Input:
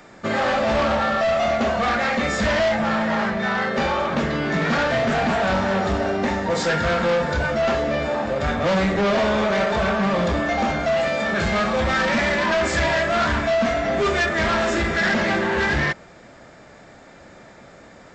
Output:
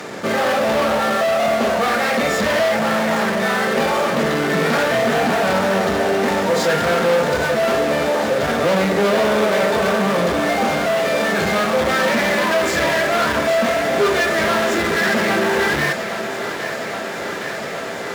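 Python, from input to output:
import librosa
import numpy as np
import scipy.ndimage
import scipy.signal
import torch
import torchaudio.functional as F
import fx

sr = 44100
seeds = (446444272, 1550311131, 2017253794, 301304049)

p1 = fx.fuzz(x, sr, gain_db=44.0, gate_db=-51.0)
p2 = x + (p1 * librosa.db_to_amplitude(-11.0))
p3 = scipy.signal.sosfilt(scipy.signal.butter(2, 130.0, 'highpass', fs=sr, output='sos'), p2)
p4 = fx.peak_eq(p3, sr, hz=450.0, db=6.5, octaves=0.35)
p5 = p4 + fx.echo_thinned(p4, sr, ms=814, feedback_pct=84, hz=190.0, wet_db=-11.5, dry=0)
y = p5 * librosa.db_to_amplitude(-2.0)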